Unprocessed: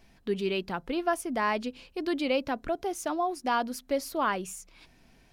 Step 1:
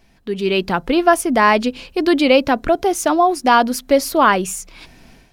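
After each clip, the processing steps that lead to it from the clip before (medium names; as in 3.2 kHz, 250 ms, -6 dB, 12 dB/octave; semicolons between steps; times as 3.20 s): level rider gain up to 11 dB; trim +4 dB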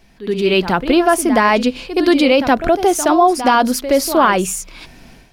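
peak limiter -7 dBFS, peak gain reduction 5.5 dB; reverse echo 71 ms -11.5 dB; trim +3.5 dB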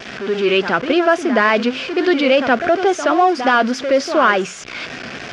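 jump at every zero crossing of -19.5 dBFS; cabinet simulation 180–5000 Hz, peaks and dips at 180 Hz -6 dB, 300 Hz -5 dB, 910 Hz -8 dB, 1.5 kHz +5 dB, 4.1 kHz -7 dB; vibrato 3.5 Hz 58 cents; trim -1 dB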